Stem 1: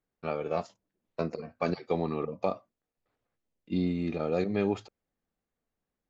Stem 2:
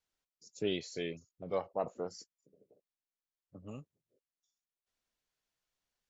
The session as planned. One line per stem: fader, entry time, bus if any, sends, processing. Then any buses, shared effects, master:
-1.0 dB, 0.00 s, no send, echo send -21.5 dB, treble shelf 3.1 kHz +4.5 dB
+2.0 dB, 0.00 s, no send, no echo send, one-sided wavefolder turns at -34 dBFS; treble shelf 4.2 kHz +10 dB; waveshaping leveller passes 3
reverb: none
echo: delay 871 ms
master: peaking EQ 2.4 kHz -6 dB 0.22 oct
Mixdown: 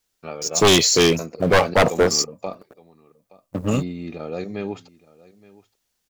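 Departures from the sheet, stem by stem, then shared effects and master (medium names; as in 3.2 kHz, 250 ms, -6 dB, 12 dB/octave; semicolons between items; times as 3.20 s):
stem 2 +2.0 dB -> +14.0 dB; master: missing peaking EQ 2.4 kHz -6 dB 0.22 oct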